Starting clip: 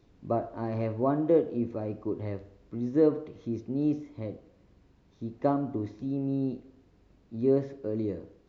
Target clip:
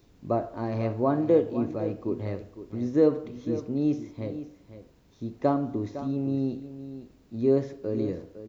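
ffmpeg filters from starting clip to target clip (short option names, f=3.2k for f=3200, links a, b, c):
-af "aemphasis=mode=production:type=50kf,aecho=1:1:507:0.237,volume=2dB"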